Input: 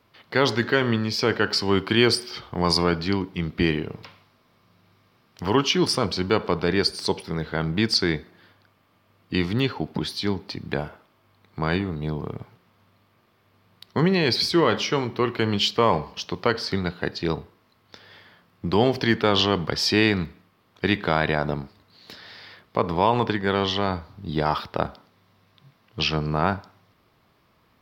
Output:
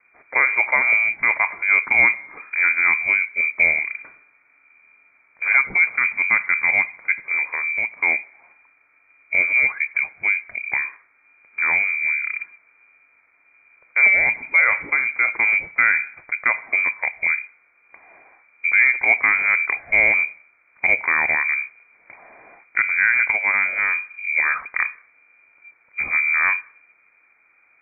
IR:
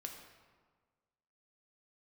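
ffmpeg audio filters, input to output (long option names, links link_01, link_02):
-filter_complex "[0:a]lowshelf=frequency=250:gain=9.5,asettb=1/sr,asplit=3[link_01][link_02][link_03];[link_01]atrim=end=7.474[link_04];[link_02]atrim=start=7.47:end=7.97,asetpts=PTS-STARTPTS,afade=type=in:duration=0.004:curve=qsin,afade=type=out:start_time=0.496:duration=0.004:curve=qsin,acompressor=threshold=-24dB:ratio=2[link_05];[link_03]atrim=start=7.966[link_06];[link_04][link_05]acrossfade=duration=0.004:curve1=hsin:curve2=qsin[link_07];[link_07][link_06]acrossfade=duration=0.004:curve1=qsin:curve2=hsin,lowpass=frequency=2100:width_type=q:width=0.5098,lowpass=frequency=2100:width_type=q:width=0.6013,lowpass=frequency=2100:width_type=q:width=0.9,lowpass=frequency=2100:width_type=q:width=2.563,afreqshift=-2500"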